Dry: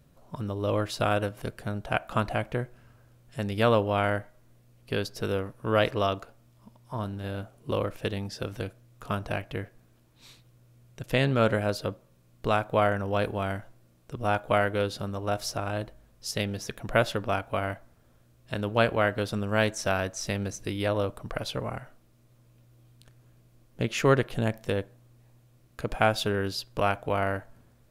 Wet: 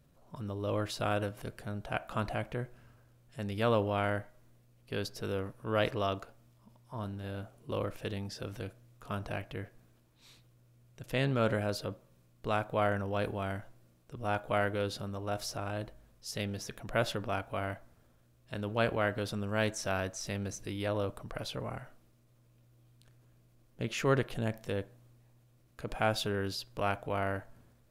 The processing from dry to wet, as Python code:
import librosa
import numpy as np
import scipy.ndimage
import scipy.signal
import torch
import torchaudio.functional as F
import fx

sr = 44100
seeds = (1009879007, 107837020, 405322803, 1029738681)

y = fx.transient(x, sr, attack_db=-3, sustain_db=3)
y = y * 10.0 ** (-5.5 / 20.0)